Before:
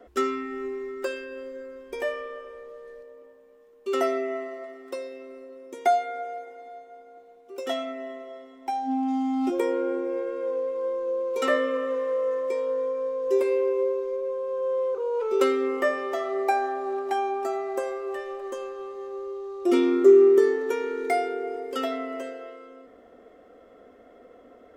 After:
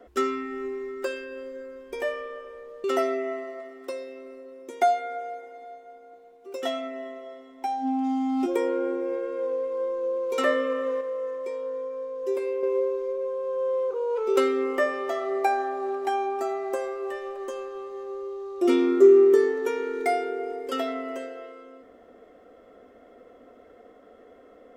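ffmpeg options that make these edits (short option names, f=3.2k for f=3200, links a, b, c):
-filter_complex "[0:a]asplit=4[a][b][c][d];[a]atrim=end=2.842[e];[b]atrim=start=3.878:end=12.052[f];[c]atrim=start=12.048:end=13.672,asetpts=PTS-STARTPTS,volume=-5dB[g];[d]atrim=start=13.668[h];[e][f]acrossfade=d=0.004:c1=hsin:c2=hsin[i];[i][g]acrossfade=d=0.004:c1=hsin:c2=hsin[j];[j][h]acrossfade=d=0.004:c1=hsin:c2=hsin"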